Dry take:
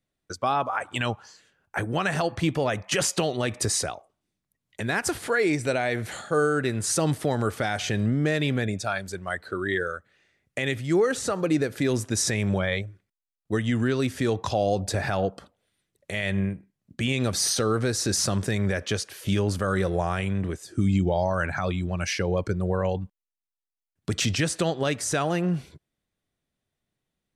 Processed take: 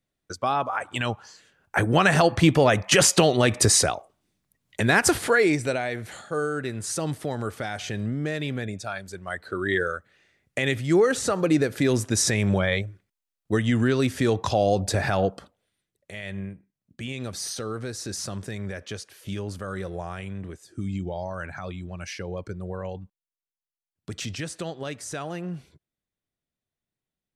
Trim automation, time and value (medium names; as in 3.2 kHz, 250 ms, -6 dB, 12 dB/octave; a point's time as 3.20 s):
1.07 s 0 dB
1.93 s +7 dB
5.14 s +7 dB
6.00 s -4.5 dB
9.08 s -4.5 dB
9.76 s +2.5 dB
15.30 s +2.5 dB
16.11 s -8 dB